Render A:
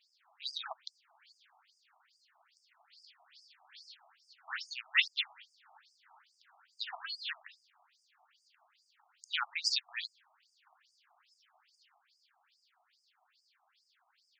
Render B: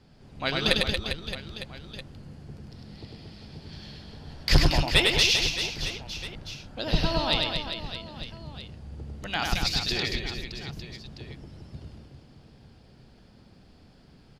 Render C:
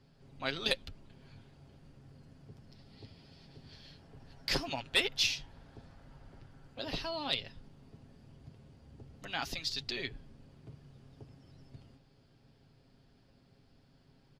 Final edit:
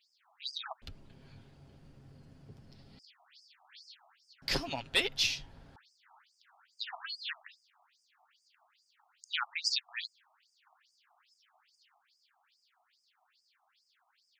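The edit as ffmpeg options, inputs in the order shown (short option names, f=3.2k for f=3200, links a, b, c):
-filter_complex "[2:a]asplit=2[a][b];[0:a]asplit=3[c][d][e];[c]atrim=end=0.822[f];[a]atrim=start=0.818:end=2.992[g];[d]atrim=start=2.988:end=4.422[h];[b]atrim=start=4.418:end=5.762[i];[e]atrim=start=5.758[j];[f][g]acrossfade=d=0.004:c1=hsin:c2=hsin[k];[k][h]acrossfade=d=0.004:c1=hsin:c2=hsin[l];[l][i]acrossfade=d=0.004:c1=hsin:c2=hsin[m];[m][j]acrossfade=d=0.004:c1=hsin:c2=hsin"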